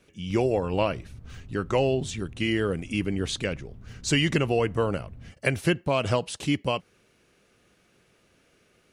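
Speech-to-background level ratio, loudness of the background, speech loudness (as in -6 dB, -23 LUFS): 20.0 dB, -47.0 LUFS, -27.0 LUFS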